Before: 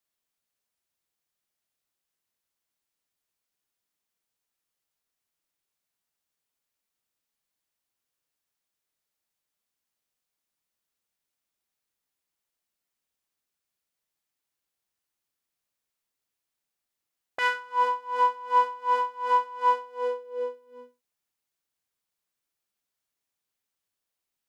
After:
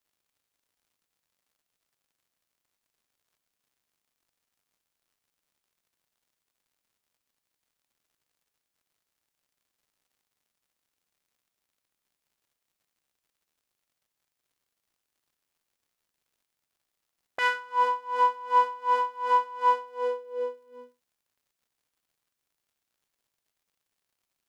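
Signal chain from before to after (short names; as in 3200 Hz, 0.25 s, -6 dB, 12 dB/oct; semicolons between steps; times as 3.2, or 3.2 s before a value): crackle 130/s -63 dBFS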